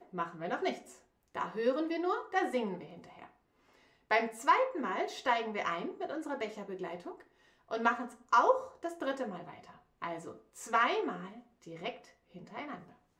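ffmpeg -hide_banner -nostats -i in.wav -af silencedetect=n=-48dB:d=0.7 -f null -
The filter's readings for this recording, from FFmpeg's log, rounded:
silence_start: 3.27
silence_end: 4.11 | silence_duration: 0.84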